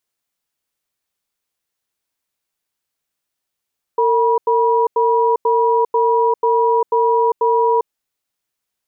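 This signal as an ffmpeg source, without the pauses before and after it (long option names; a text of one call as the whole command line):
ffmpeg -f lavfi -i "aevalsrc='0.188*(sin(2*PI*456*t)+sin(2*PI*966*t))*clip(min(mod(t,0.49),0.4-mod(t,0.49))/0.005,0,1)':duration=3.89:sample_rate=44100" out.wav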